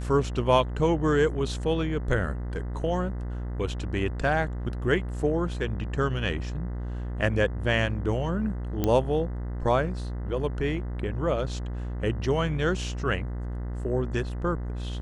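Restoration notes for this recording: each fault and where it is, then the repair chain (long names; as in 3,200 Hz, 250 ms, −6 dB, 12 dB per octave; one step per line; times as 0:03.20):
mains buzz 60 Hz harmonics 34 −32 dBFS
0:08.84: click −12 dBFS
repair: click removal
hum removal 60 Hz, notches 34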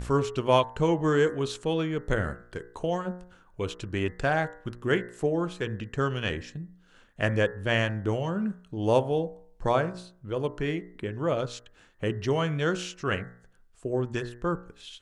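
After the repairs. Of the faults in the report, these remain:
none of them is left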